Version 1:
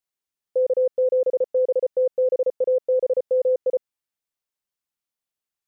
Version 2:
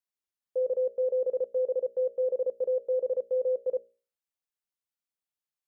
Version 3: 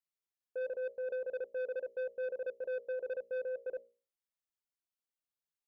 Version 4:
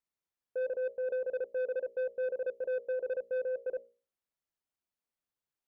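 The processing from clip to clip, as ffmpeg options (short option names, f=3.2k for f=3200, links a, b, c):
-af "bandreject=f=60:t=h:w=6,bandreject=f=120:t=h:w=6,bandreject=f=180:t=h:w=6,bandreject=f=240:t=h:w=6,bandreject=f=300:t=h:w=6,bandreject=f=360:t=h:w=6,bandreject=f=420:t=h:w=6,bandreject=f=480:t=h:w=6,bandreject=f=540:t=h:w=6,bandreject=f=600:t=h:w=6,volume=-7dB"
-af "aphaser=in_gain=1:out_gain=1:delay=4.5:decay=0.3:speed=0.89:type=triangular,asoftclip=type=tanh:threshold=-27.5dB,volume=-6dB"
-af "highshelf=f=2.2k:g=-8.5,volume=4.5dB"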